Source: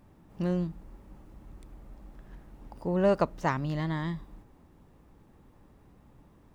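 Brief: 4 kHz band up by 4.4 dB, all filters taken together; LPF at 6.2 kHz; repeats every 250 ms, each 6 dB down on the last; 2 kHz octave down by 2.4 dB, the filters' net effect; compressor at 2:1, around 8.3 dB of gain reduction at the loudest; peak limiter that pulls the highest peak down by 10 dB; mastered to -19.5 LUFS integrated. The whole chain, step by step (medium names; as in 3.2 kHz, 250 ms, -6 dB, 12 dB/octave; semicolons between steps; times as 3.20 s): low-pass 6.2 kHz; peaking EQ 2 kHz -4.5 dB; peaking EQ 4 kHz +8 dB; compression 2:1, threshold -34 dBFS; peak limiter -29 dBFS; feedback delay 250 ms, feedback 50%, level -6 dB; trim +21.5 dB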